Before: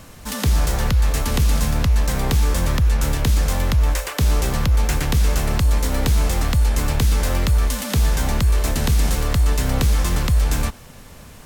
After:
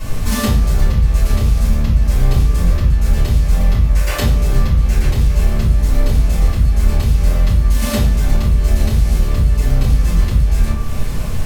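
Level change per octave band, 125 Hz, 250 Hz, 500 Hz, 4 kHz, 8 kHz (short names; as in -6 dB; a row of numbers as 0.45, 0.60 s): +4.5, +4.0, +1.5, -1.5, -3.0 dB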